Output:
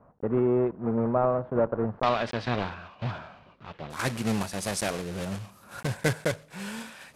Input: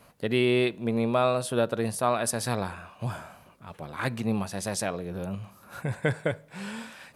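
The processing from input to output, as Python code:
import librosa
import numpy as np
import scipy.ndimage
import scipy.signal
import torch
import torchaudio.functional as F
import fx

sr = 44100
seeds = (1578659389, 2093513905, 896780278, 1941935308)

y = fx.block_float(x, sr, bits=3)
y = fx.lowpass(y, sr, hz=fx.steps((0.0, 1200.0), (2.03, 3900.0), (3.9, 12000.0)), slope=24)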